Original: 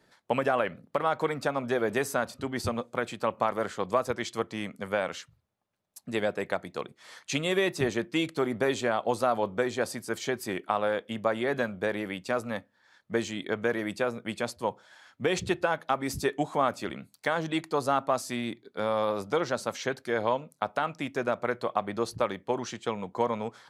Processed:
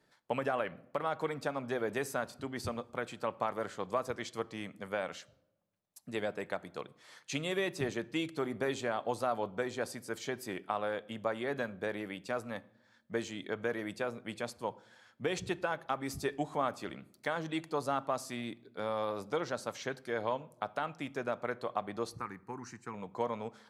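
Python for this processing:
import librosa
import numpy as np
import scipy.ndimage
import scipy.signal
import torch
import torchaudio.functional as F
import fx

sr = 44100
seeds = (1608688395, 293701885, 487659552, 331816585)

y = fx.fixed_phaser(x, sr, hz=1400.0, stages=4, at=(22.13, 22.94))
y = fx.room_shoebox(y, sr, seeds[0], volume_m3=3000.0, walls='furnished', distance_m=0.39)
y = y * librosa.db_to_amplitude(-7.0)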